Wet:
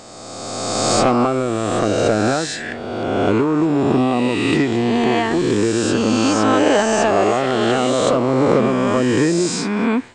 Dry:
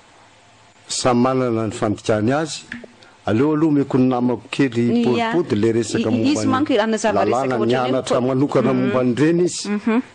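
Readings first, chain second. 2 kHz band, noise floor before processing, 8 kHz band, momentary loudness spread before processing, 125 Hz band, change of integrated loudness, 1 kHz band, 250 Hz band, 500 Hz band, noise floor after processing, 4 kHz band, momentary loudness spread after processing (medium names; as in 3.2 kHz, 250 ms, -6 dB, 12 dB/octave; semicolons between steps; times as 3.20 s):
+4.0 dB, -49 dBFS, +4.5 dB, 5 LU, 0.0 dB, +1.5 dB, +3.5 dB, +0.5 dB, +2.0 dB, -31 dBFS, +4.0 dB, 6 LU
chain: reverse spectral sustain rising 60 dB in 2.17 s; trim -2.5 dB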